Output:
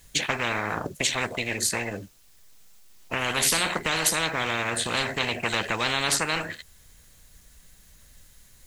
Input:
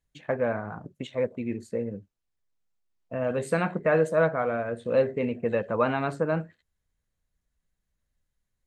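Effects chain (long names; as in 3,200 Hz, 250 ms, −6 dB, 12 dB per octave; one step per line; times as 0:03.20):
high-shelf EQ 2,600 Hz +11 dB
every bin compressed towards the loudest bin 10 to 1
level +1 dB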